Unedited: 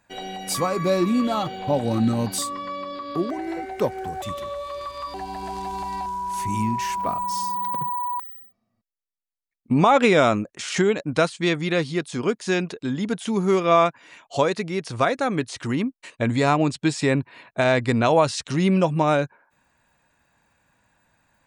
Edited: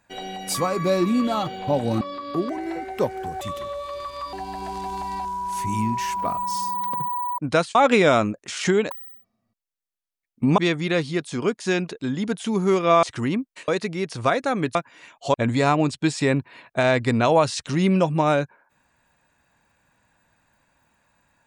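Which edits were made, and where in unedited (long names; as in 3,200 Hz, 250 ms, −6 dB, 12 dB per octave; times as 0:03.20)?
0:02.01–0:02.82: remove
0:08.19–0:09.86: swap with 0:11.02–0:11.39
0:13.84–0:14.43: swap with 0:15.50–0:16.15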